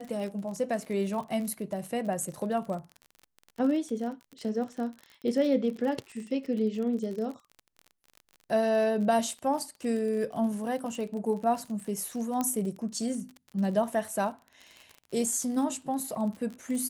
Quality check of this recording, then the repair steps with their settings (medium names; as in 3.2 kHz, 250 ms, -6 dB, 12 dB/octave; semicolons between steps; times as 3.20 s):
crackle 41 per s -36 dBFS
12.41 s: pop -16 dBFS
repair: de-click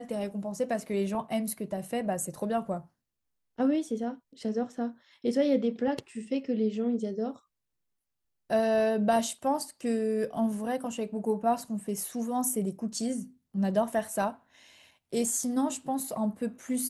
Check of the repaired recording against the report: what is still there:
nothing left